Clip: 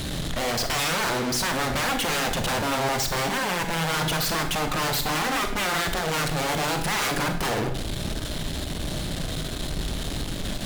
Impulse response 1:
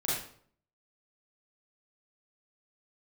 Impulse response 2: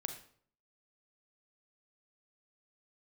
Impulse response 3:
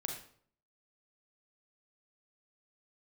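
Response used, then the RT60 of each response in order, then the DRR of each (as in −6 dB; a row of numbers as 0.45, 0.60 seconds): 2; 0.55, 0.55, 0.55 seconds; −8.5, 5.5, 1.5 decibels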